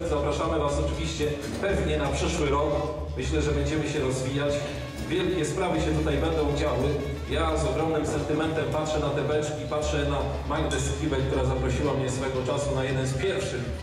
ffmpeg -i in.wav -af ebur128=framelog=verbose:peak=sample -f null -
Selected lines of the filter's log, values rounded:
Integrated loudness:
  I:         -27.0 LUFS
  Threshold: -37.0 LUFS
Loudness range:
  LRA:         0.9 LU
  Threshold: -47.0 LUFS
  LRA low:   -27.4 LUFS
  LRA high:  -26.4 LUFS
Sample peak:
  Peak:      -13.6 dBFS